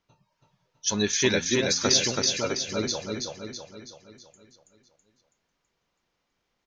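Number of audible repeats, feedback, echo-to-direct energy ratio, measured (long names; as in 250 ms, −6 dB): 6, 50%, −2.5 dB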